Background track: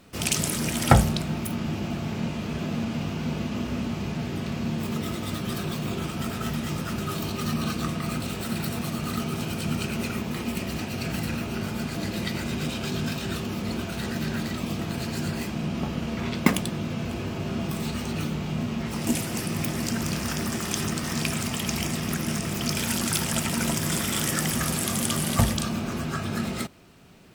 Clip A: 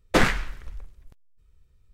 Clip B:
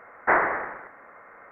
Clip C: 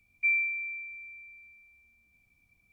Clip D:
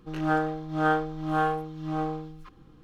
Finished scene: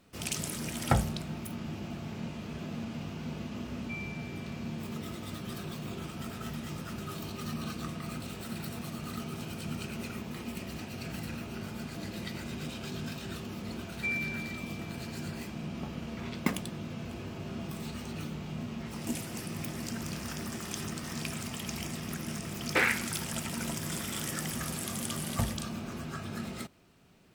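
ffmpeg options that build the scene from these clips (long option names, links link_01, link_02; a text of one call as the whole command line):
ffmpeg -i bed.wav -i cue0.wav -i cue1.wav -i cue2.wav -filter_complex "[3:a]asplit=2[link_01][link_02];[0:a]volume=-9.5dB[link_03];[link_02]acompressor=mode=upward:threshold=-47dB:ratio=2.5:attack=3.2:release=140:knee=2.83:detection=peak[link_04];[1:a]highpass=500,equalizer=frequency=660:width_type=q:width=4:gain=-10,equalizer=frequency=1100:width_type=q:width=4:gain=-8,equalizer=frequency=2300:width_type=q:width=4:gain=6,equalizer=frequency=3300:width_type=q:width=4:gain=-7,lowpass=frequency=3900:width=0.5412,lowpass=frequency=3900:width=1.3066[link_05];[link_01]atrim=end=2.72,asetpts=PTS-STARTPTS,volume=-16.5dB,afade=type=in:duration=0.004:curve=hsin,afade=type=out:start_time=2.716:duration=0.004:curve=hsin,adelay=3660[link_06];[link_04]atrim=end=2.72,asetpts=PTS-STARTPTS,volume=-7dB,afade=type=in:duration=0.004:curve=hsin,afade=type=out:start_time=2.716:duration=0.004:curve=hsin,adelay=608580S[link_07];[link_05]atrim=end=1.93,asetpts=PTS-STARTPTS,volume=-3dB,afade=type=in:duration=0.004:curve=hsin,afade=type=out:start_time=1.926:duration=0.004:curve=hsin,adelay=22610[link_08];[link_03][link_06][link_07][link_08]amix=inputs=4:normalize=0" out.wav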